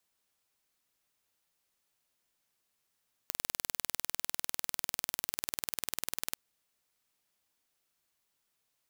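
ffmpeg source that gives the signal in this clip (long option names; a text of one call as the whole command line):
ffmpeg -f lavfi -i "aevalsrc='0.562*eq(mod(n,2194),0)':duration=3.04:sample_rate=44100" out.wav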